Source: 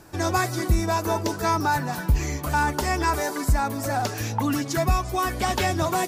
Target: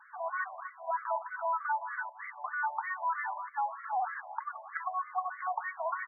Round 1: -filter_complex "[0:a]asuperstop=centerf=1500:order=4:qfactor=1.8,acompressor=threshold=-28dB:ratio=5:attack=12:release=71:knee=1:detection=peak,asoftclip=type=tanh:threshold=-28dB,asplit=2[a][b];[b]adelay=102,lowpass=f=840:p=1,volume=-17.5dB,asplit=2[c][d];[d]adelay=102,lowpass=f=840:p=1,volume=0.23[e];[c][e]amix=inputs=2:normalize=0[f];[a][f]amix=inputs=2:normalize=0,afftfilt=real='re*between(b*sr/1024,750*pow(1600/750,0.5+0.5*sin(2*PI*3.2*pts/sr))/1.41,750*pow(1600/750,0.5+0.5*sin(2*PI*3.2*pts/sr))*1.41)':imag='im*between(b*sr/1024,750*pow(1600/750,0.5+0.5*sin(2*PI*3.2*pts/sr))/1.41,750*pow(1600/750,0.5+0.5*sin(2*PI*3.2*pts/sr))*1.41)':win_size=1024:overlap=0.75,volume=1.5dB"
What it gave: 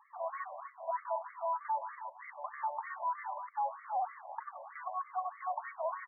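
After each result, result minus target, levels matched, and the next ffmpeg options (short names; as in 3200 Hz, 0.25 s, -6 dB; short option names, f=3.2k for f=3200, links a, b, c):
2000 Hz band -8.0 dB; soft clip: distortion +10 dB
-filter_complex "[0:a]asuperstop=centerf=500:order=4:qfactor=1.8,acompressor=threshold=-28dB:ratio=5:attack=12:release=71:knee=1:detection=peak,asoftclip=type=tanh:threshold=-28dB,asplit=2[a][b];[b]adelay=102,lowpass=f=840:p=1,volume=-17.5dB,asplit=2[c][d];[d]adelay=102,lowpass=f=840:p=1,volume=0.23[e];[c][e]amix=inputs=2:normalize=0[f];[a][f]amix=inputs=2:normalize=0,afftfilt=real='re*between(b*sr/1024,750*pow(1600/750,0.5+0.5*sin(2*PI*3.2*pts/sr))/1.41,750*pow(1600/750,0.5+0.5*sin(2*PI*3.2*pts/sr))*1.41)':imag='im*between(b*sr/1024,750*pow(1600/750,0.5+0.5*sin(2*PI*3.2*pts/sr))/1.41,750*pow(1600/750,0.5+0.5*sin(2*PI*3.2*pts/sr))*1.41)':win_size=1024:overlap=0.75,volume=1.5dB"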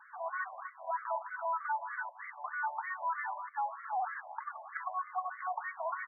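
soft clip: distortion +10 dB
-filter_complex "[0:a]asuperstop=centerf=500:order=4:qfactor=1.8,acompressor=threshold=-28dB:ratio=5:attack=12:release=71:knee=1:detection=peak,asoftclip=type=tanh:threshold=-20.5dB,asplit=2[a][b];[b]adelay=102,lowpass=f=840:p=1,volume=-17.5dB,asplit=2[c][d];[d]adelay=102,lowpass=f=840:p=1,volume=0.23[e];[c][e]amix=inputs=2:normalize=0[f];[a][f]amix=inputs=2:normalize=0,afftfilt=real='re*between(b*sr/1024,750*pow(1600/750,0.5+0.5*sin(2*PI*3.2*pts/sr))/1.41,750*pow(1600/750,0.5+0.5*sin(2*PI*3.2*pts/sr))*1.41)':imag='im*between(b*sr/1024,750*pow(1600/750,0.5+0.5*sin(2*PI*3.2*pts/sr))/1.41,750*pow(1600/750,0.5+0.5*sin(2*PI*3.2*pts/sr))*1.41)':win_size=1024:overlap=0.75,volume=1.5dB"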